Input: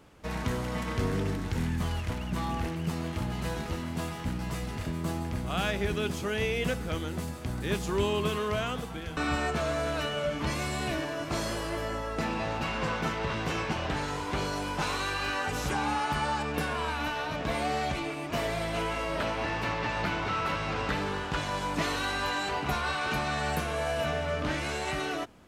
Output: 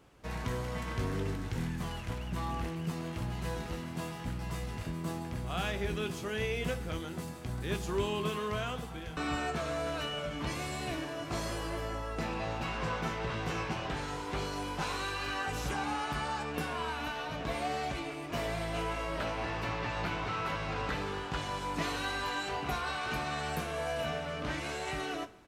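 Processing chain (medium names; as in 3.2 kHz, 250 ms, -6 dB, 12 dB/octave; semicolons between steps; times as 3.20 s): doubling 18 ms -12.5 dB; reverberation, pre-delay 3 ms, DRR 11 dB; trim -5 dB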